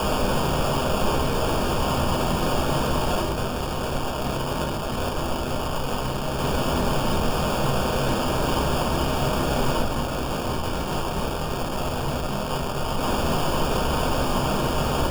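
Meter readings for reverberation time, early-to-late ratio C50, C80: 0.45 s, 9.5 dB, 14.0 dB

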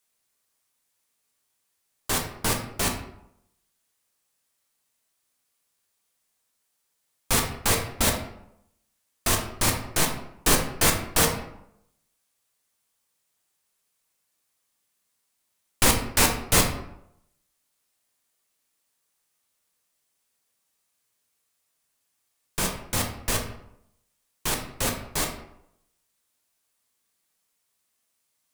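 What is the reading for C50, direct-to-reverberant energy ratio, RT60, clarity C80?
6.0 dB, 1.5 dB, 0.80 s, 10.0 dB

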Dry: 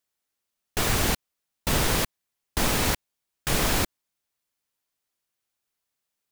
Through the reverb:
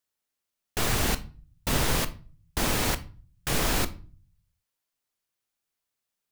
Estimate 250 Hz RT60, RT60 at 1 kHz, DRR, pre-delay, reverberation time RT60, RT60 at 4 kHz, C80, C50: 0.60 s, 0.35 s, 11.5 dB, 19 ms, 0.40 s, 0.30 s, 22.5 dB, 17.5 dB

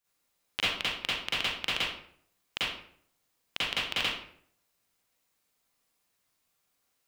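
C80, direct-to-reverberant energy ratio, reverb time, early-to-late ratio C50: 3.0 dB, -11.0 dB, 0.60 s, -4.0 dB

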